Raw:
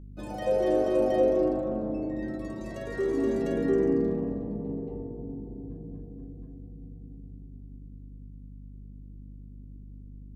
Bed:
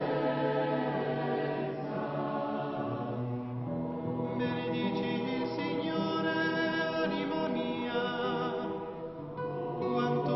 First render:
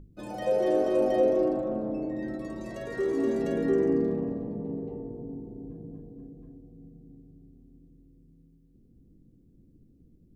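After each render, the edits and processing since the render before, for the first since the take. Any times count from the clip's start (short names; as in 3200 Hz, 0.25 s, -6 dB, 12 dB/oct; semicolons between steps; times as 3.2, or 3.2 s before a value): notches 50/100/150/200/250/300 Hz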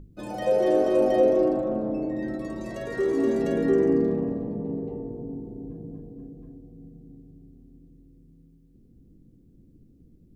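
gain +3.5 dB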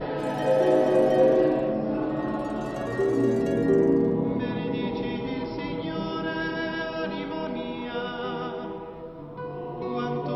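add bed +1 dB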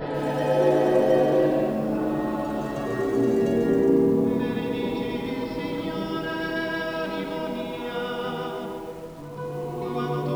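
reverse echo 0.129 s -11 dB; lo-fi delay 0.143 s, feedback 35%, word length 8-bit, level -5 dB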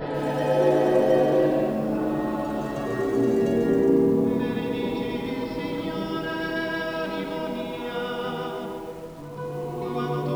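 nothing audible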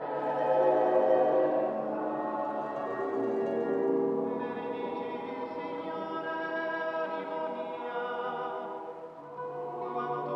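band-pass 890 Hz, Q 1.3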